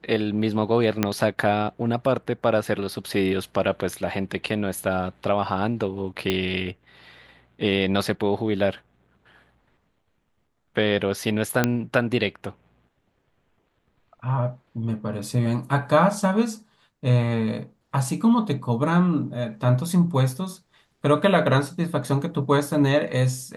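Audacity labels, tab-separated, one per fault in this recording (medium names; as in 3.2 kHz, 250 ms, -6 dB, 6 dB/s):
1.030000	1.030000	pop -6 dBFS
6.300000	6.300000	pop -9 dBFS
11.640000	11.640000	pop -5 dBFS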